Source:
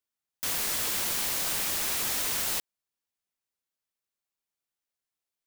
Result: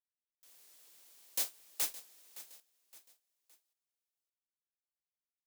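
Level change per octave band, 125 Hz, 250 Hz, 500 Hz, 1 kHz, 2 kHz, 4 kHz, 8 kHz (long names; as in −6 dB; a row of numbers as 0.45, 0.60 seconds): below −30 dB, −21.0 dB, −17.5 dB, −19.5 dB, −18.5 dB, −15.0 dB, −13.0 dB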